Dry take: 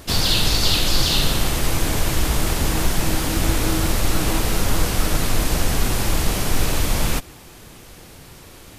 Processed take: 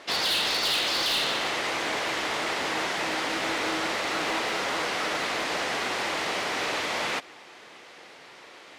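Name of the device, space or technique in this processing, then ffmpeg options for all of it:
megaphone: -af "highpass=500,lowpass=4k,equalizer=f=2k:t=o:w=0.25:g=4.5,asoftclip=type=hard:threshold=-22dB"

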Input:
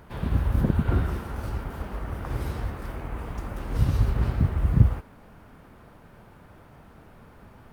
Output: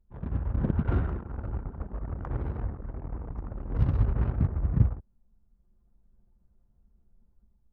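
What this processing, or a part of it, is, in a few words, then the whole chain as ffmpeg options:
voice memo with heavy noise removal: -af "anlmdn=10,dynaudnorm=f=430:g=3:m=5.5dB,volume=-7dB"

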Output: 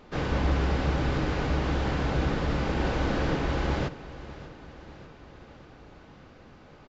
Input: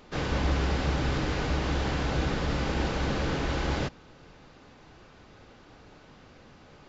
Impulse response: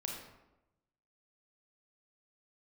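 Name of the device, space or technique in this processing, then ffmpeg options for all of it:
behind a face mask: -filter_complex "[0:a]highshelf=f=3.3k:g=-8,asettb=1/sr,asplit=3[a][b][c];[a]atrim=end=2.794[d];[b]atrim=start=2.79:end=3.36,asetpts=PTS-STARTPTS,afade=t=in:d=0.004:c=qsin,afade=t=out:st=0.566:d=0.004:c=qsin,asplit=2[e][f];[f]adelay=48,volume=-5dB[g];[e][g]amix=inputs=2:normalize=0,atrim=end_sample=25137[h];[c]atrim=start=3.356[i];[d][h]acrossfade=d=0.004:c1=hsin:c2=qsin[j];[j][i]acrossfade=d=0.004:c1=qsin:c2=hsin,aecho=1:1:593|1186|1779|2372|2965:0.15|0.0853|0.0486|0.0277|0.0158,volume=1.5dB"

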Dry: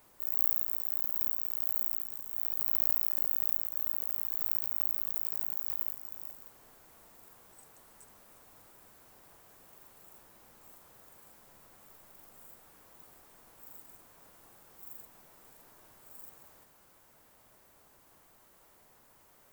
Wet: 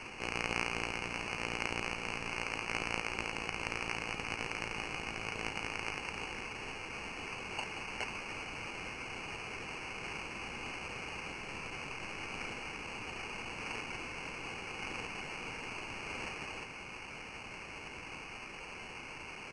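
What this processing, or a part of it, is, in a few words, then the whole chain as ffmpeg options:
crushed at another speed: -af "asetrate=88200,aresample=44100,acrusher=samples=6:mix=1:aa=0.000001,asetrate=22050,aresample=44100,superequalizer=8b=0.562:12b=3.55:13b=0.631:16b=0.355,volume=16.5dB"

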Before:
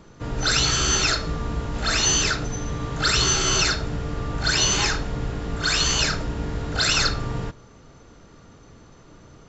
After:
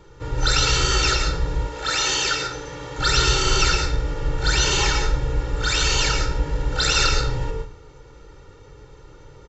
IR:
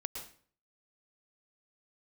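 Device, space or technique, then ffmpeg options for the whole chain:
microphone above a desk: -filter_complex "[0:a]aecho=1:1:2.2:0.82[a];[1:a]atrim=start_sample=2205[b];[a][b]afir=irnorm=-1:irlink=0,asettb=1/sr,asplit=3[c][d][e];[c]atrim=end=1.674[f];[d]atrim=start=1.67:end=2.99,asetpts=PTS-STARTPTS,afade=t=in:d=0.004:c=qsin,afade=t=out:st=1.316:d=0.004:c=qsin,highpass=f=350:p=1[g];[e]atrim=start=2.986[h];[f][g]acrossfade=d=0.004:c1=hsin:c2=qsin[i];[i][h]acrossfade=d=0.004:c1=qsin:c2=hsin"

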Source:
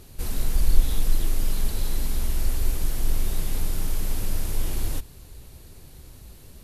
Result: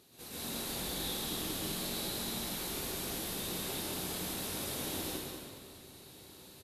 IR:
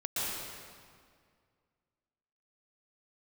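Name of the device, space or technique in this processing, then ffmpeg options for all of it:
PA in a hall: -filter_complex "[0:a]highpass=200,equalizer=f=3.8k:t=o:w=0.44:g=6,aecho=1:1:190:0.422[a];[1:a]atrim=start_sample=2205[b];[a][b]afir=irnorm=-1:irlink=0,volume=-8.5dB"

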